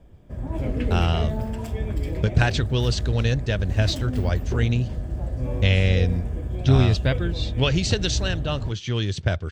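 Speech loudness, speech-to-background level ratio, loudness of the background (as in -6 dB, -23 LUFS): -24.0 LUFS, 5.0 dB, -29.0 LUFS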